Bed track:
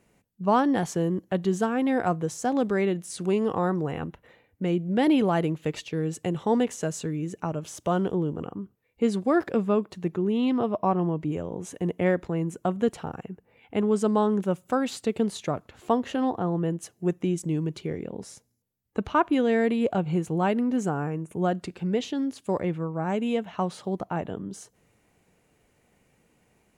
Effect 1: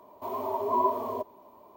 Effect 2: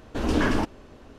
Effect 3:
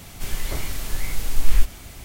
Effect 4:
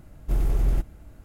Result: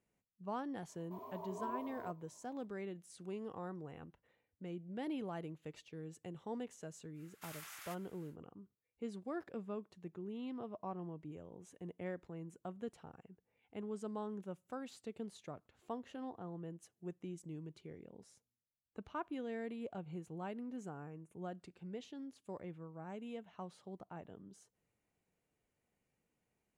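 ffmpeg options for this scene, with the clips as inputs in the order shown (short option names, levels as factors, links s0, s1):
-filter_complex "[0:a]volume=0.1[s0];[4:a]highpass=f=1300:w=0.5412,highpass=f=1300:w=1.3066[s1];[1:a]atrim=end=1.76,asetpts=PTS-STARTPTS,volume=0.133,afade=t=in:d=0.004:c=hsin,afade=t=out:st=1.756:d=0.004:c=hsin,adelay=890[s2];[s1]atrim=end=1.24,asetpts=PTS-STARTPTS,volume=0.75,afade=t=in:d=0.1,afade=t=out:st=1.14:d=0.1,adelay=7130[s3];[s0][s2][s3]amix=inputs=3:normalize=0"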